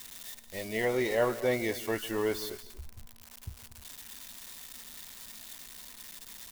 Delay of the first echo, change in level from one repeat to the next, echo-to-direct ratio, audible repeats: 0.152 s, no steady repeat, -13.5 dB, 3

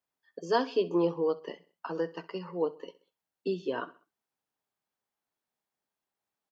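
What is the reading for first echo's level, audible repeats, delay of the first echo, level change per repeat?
-19.0 dB, 3, 65 ms, -7.5 dB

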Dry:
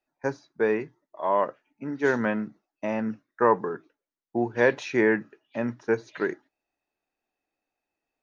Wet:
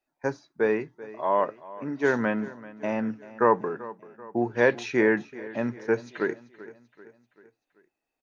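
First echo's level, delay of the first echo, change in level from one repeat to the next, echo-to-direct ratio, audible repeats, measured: -18.0 dB, 0.387 s, -6.0 dB, -16.5 dB, 3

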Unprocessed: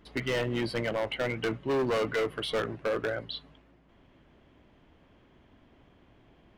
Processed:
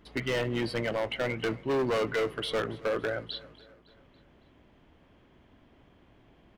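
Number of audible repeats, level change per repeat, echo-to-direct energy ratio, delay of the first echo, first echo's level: 3, -6.0 dB, -19.5 dB, 0.279 s, -21.0 dB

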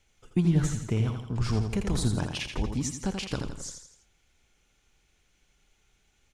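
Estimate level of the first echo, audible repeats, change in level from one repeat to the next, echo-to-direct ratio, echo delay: -6.5 dB, 4, -6.5 dB, -5.5 dB, 83 ms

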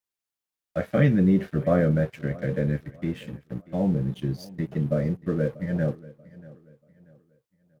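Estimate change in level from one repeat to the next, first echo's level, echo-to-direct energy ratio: -9.0 dB, -20.5 dB, -20.0 dB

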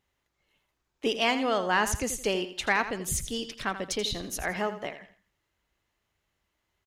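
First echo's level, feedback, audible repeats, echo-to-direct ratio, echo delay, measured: -11.5 dB, 33%, 3, -11.0 dB, 83 ms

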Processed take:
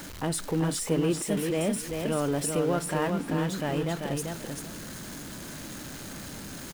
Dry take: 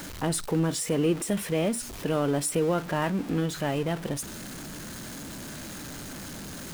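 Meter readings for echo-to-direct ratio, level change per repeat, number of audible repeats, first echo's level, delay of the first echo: -5.0 dB, -15.0 dB, 2, -5.0 dB, 0.389 s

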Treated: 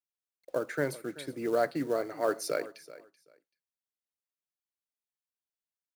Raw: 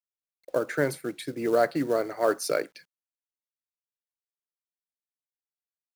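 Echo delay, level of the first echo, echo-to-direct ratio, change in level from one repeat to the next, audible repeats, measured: 0.383 s, -17.5 dB, -17.5 dB, -14.5 dB, 2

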